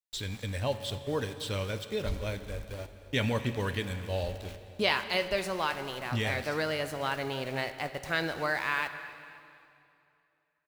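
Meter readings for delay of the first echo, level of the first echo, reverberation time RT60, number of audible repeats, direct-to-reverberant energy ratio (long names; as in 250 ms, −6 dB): 260 ms, −19.0 dB, 2.6 s, 3, 9.5 dB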